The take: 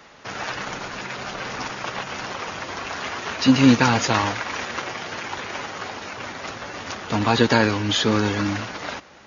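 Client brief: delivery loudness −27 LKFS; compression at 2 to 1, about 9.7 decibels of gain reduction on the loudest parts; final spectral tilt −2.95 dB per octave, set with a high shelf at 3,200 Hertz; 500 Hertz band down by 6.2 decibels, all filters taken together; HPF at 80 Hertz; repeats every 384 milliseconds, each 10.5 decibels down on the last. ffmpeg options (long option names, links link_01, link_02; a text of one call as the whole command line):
ffmpeg -i in.wav -af "highpass=80,equalizer=frequency=500:width_type=o:gain=-8,highshelf=frequency=3200:gain=5.5,acompressor=threshold=-29dB:ratio=2,aecho=1:1:384|768|1152:0.299|0.0896|0.0269,volume=2dB" out.wav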